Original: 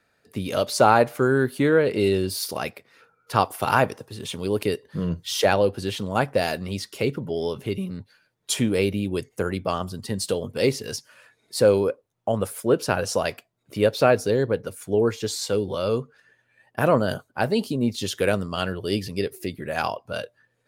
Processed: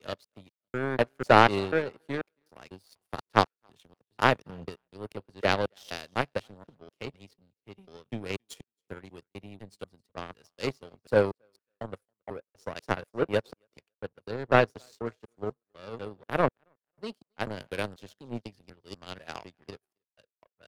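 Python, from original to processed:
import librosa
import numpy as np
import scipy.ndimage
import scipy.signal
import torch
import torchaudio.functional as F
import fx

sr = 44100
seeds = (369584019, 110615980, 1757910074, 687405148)

y = fx.block_reorder(x, sr, ms=246.0, group=3)
y = fx.high_shelf(y, sr, hz=9500.0, db=-12.0)
y = fx.echo_thinned(y, sr, ms=274, feedback_pct=45, hz=190.0, wet_db=-19.5)
y = fx.power_curve(y, sr, exponent=2.0)
y = fx.band_widen(y, sr, depth_pct=40)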